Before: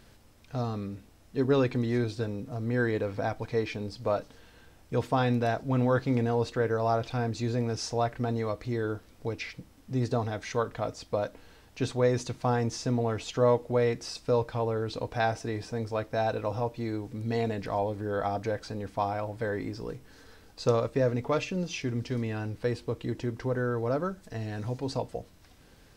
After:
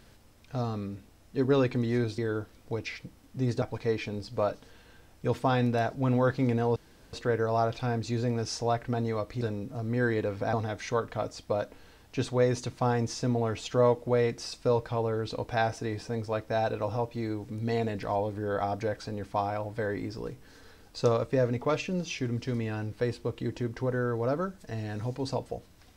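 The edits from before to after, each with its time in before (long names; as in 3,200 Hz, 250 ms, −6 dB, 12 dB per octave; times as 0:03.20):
0:02.18–0:03.30: swap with 0:08.72–0:10.16
0:06.44: splice in room tone 0.37 s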